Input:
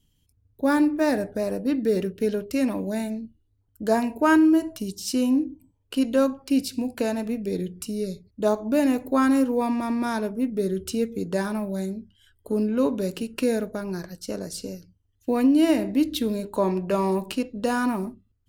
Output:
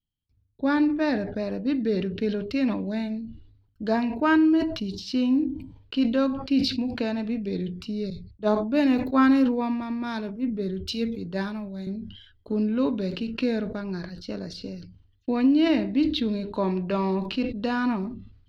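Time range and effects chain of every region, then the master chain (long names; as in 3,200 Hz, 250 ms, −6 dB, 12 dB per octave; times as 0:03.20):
0:08.10–0:11.87: high-shelf EQ 11,000 Hz +11.5 dB + multiband upward and downward expander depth 100%
whole clip: noise gate with hold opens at −50 dBFS; drawn EQ curve 230 Hz 0 dB, 510 Hz −5 dB, 4,300 Hz +2 dB, 8,400 Hz −29 dB; level that may fall only so fast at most 73 dB per second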